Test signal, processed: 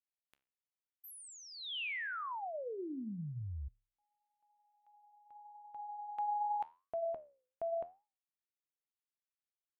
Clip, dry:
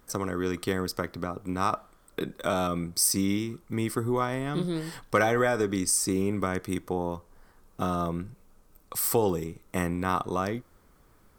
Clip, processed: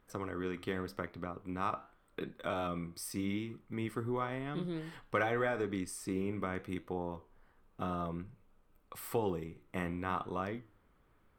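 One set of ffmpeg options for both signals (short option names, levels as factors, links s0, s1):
-af "highshelf=f=4000:t=q:w=1.5:g=-9.5,flanger=delay=9.9:depth=7.1:regen=-78:speed=0.87:shape=triangular,volume=0.596"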